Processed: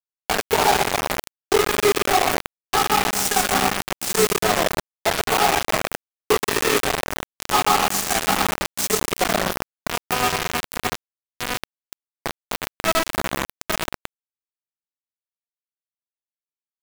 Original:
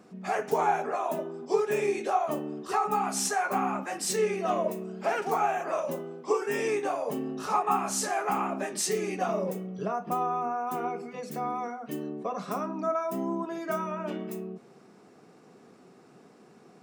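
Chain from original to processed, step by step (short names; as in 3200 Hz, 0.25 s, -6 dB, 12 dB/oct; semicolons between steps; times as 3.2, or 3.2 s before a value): split-band echo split 400 Hz, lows 0.223 s, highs 0.122 s, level -6 dB; bit-crush 4-bit; gain +6 dB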